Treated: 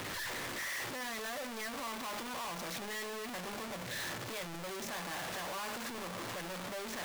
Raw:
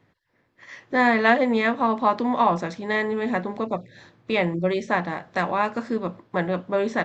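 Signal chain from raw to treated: one-bit comparator; bass shelf 390 Hz -8.5 dB; feedback comb 580 Hz, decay 0.55 s; trim -6.5 dB

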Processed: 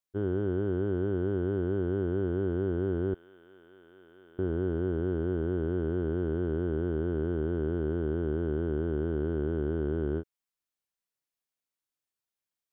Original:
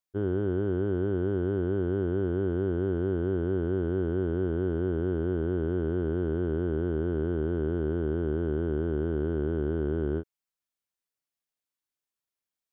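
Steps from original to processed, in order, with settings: 3.14–4.39 s: differentiator; trim -1.5 dB

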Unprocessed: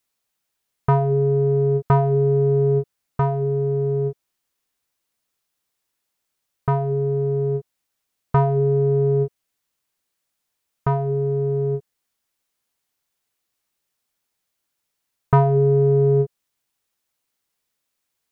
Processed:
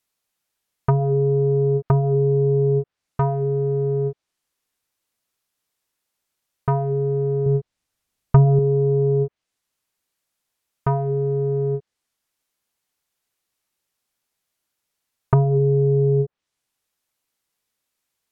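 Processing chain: low-pass that closes with the level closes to 440 Hz, closed at -13 dBFS; 7.46–8.59 s: bass shelf 160 Hz +10.5 dB

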